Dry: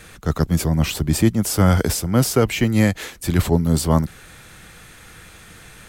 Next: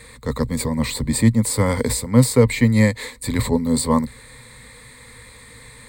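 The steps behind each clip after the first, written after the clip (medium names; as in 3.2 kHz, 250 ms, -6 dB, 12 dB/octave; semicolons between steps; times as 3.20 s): rippled EQ curve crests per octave 0.98, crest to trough 15 dB; trim -2.5 dB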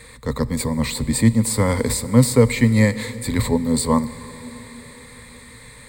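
reverberation RT60 5.0 s, pre-delay 5 ms, DRR 14.5 dB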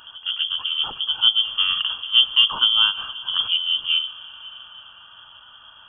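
Butterworth band-stop 1.1 kHz, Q 1.3; reverse echo 936 ms -17 dB; frequency inversion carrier 3.3 kHz; trim -3 dB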